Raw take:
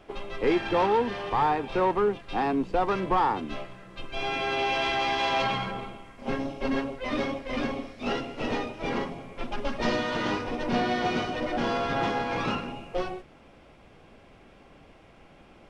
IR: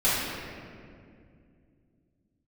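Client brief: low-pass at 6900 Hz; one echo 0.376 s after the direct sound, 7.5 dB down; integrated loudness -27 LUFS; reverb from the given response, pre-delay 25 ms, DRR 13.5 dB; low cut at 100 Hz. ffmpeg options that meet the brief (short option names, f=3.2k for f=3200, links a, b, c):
-filter_complex "[0:a]highpass=100,lowpass=6.9k,aecho=1:1:376:0.422,asplit=2[a][b];[1:a]atrim=start_sample=2205,adelay=25[c];[b][c]afir=irnorm=-1:irlink=0,volume=-28.5dB[d];[a][d]amix=inputs=2:normalize=0,volume=0.5dB"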